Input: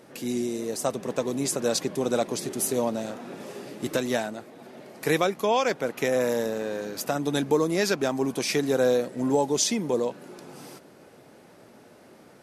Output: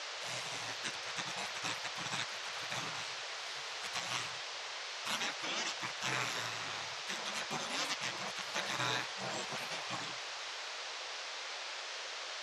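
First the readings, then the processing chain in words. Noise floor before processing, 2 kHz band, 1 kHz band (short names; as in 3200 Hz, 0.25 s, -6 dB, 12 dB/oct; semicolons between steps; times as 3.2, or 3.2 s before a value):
-53 dBFS, -3.0 dB, -8.5 dB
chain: HPF 210 Hz 12 dB/oct; notches 60/120/180/240/300/360/420/480 Hz; spectral gate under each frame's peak -25 dB weak; high shelf 7300 Hz -8 dB; wow and flutter 29 cents; band noise 460–6000 Hz -47 dBFS; air absorption 59 m; gain +5 dB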